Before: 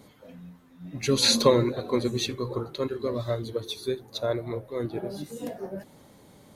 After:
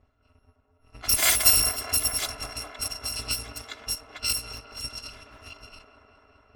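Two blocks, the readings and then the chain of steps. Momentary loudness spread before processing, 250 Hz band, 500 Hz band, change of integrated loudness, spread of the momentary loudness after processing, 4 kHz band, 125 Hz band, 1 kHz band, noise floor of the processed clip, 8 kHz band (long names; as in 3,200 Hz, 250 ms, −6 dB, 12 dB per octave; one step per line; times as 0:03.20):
18 LU, −17.5 dB, −16.5 dB, +3.5 dB, 19 LU, +1.0 dB, −9.5 dB, −3.0 dB, −67 dBFS, +9.5 dB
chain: samples in bit-reversed order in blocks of 256 samples
low-pass that shuts in the quiet parts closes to 880 Hz, open at −22.5 dBFS
delay with a band-pass on its return 206 ms, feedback 79%, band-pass 680 Hz, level −3.5 dB
level +2 dB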